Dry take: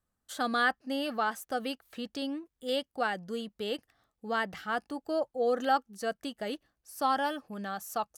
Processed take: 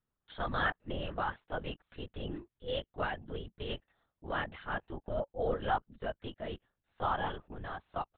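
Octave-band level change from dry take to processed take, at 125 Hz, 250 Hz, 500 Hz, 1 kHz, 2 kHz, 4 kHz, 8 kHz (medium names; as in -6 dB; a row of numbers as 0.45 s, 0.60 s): +10.0 dB, -8.0 dB, -5.0 dB, -5.0 dB, -5.0 dB, -6.0 dB, under -30 dB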